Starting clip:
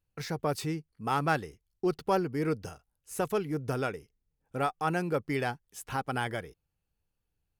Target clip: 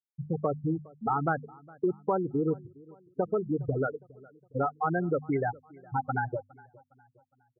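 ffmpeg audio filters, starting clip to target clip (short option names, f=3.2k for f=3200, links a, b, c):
-filter_complex "[0:a]afftfilt=real='re*gte(hypot(re,im),0.112)':imag='im*gte(hypot(re,im),0.112)':win_size=1024:overlap=0.75,bandreject=f=50:t=h:w=6,bandreject=f=100:t=h:w=6,bandreject=f=150:t=h:w=6,bandreject=f=200:t=h:w=6,bandreject=f=250:t=h:w=6,acompressor=threshold=-32dB:ratio=4,asplit=2[a][b];[b]adelay=411,lowpass=f=2.4k:p=1,volume=-23.5dB,asplit=2[c][d];[d]adelay=411,lowpass=f=2.4k:p=1,volume=0.45,asplit=2[e][f];[f]adelay=411,lowpass=f=2.4k:p=1,volume=0.45[g];[c][e][g]amix=inputs=3:normalize=0[h];[a][h]amix=inputs=2:normalize=0,volume=7dB"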